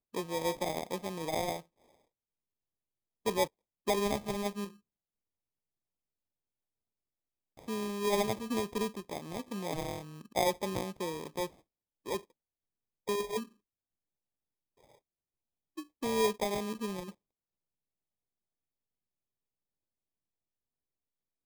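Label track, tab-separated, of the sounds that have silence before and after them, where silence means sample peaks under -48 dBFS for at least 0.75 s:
3.260000	4.710000	sound
7.570000	12.210000	sound
13.080000	13.450000	sound
15.770000	17.110000	sound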